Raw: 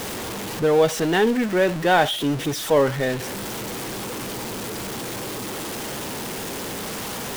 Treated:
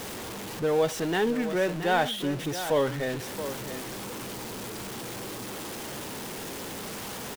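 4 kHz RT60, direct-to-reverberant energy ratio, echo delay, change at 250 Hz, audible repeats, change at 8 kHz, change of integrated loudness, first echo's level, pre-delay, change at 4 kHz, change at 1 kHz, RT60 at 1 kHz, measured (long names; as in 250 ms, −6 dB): no reverb audible, no reverb audible, 674 ms, −6.5 dB, 1, −6.5 dB, −6.5 dB, −11.0 dB, no reverb audible, −6.5 dB, −6.5 dB, no reverb audible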